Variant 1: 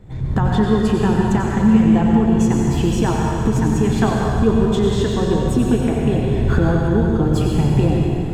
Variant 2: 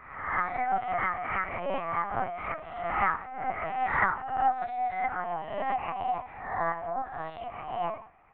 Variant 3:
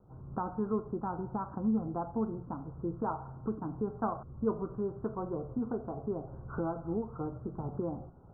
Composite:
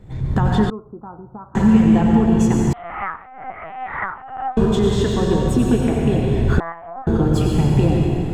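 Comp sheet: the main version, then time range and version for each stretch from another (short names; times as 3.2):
1
0.7–1.55 from 3
2.73–4.57 from 2
6.6–7.07 from 2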